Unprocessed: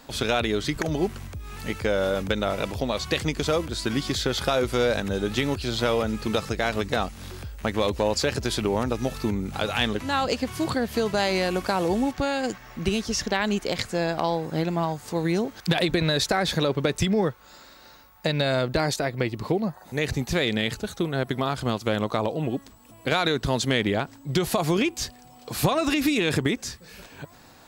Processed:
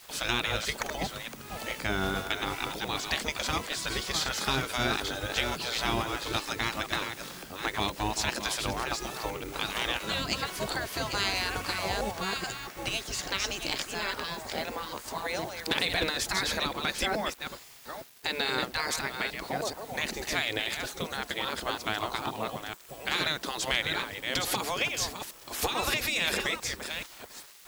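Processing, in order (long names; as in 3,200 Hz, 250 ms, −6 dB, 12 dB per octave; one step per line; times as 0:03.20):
delay that plays each chunk backwards 429 ms, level −7 dB
bit reduction 8 bits
gate on every frequency bin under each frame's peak −10 dB weak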